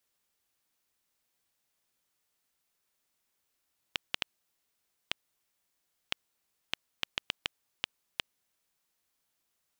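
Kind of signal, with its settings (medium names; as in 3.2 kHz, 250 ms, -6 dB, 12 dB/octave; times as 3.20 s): random clicks 2.1 per s -10.5 dBFS 5.72 s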